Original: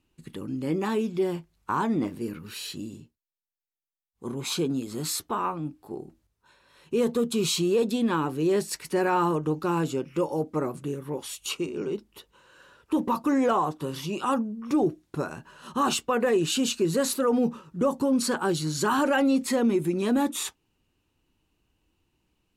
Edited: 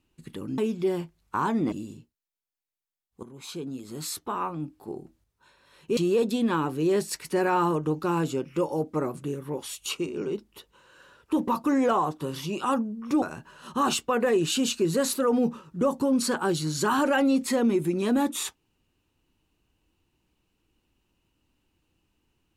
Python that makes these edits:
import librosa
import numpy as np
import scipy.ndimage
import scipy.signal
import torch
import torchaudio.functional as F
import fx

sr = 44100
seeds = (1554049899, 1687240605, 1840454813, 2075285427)

y = fx.edit(x, sr, fx.cut(start_s=0.58, length_s=0.35),
    fx.cut(start_s=2.07, length_s=0.68),
    fx.fade_in_from(start_s=4.26, length_s=1.51, floor_db=-15.5),
    fx.cut(start_s=7.0, length_s=0.57),
    fx.cut(start_s=14.82, length_s=0.4), tone=tone)